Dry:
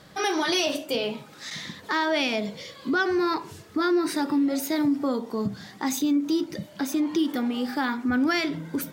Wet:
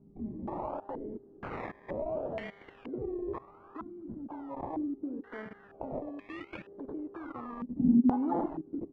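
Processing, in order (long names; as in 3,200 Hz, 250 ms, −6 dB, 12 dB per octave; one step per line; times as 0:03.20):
0:05.33–0:05.77: lower of the sound and its delayed copy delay 0.4 ms
on a send at −21 dB: convolution reverb RT60 5.8 s, pre-delay 17 ms
on the sum: downward compressor 4 to 1, threshold −35 dBFS, peak gain reduction 13 dB
repeating echo 96 ms, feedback 41%, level −8.5 dB
output level in coarse steps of 20 dB
low-shelf EQ 180 Hz −11.5 dB
hum with harmonics 400 Hz, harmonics 38, −60 dBFS −6 dB per octave
sample-and-hold swept by an LFO 24×, swing 60% 0.69 Hz
0:07.79–0:08.46: parametric band 250 Hz +13.5 dB 1.9 octaves
low-pass on a step sequencer 2.1 Hz 230–2,300 Hz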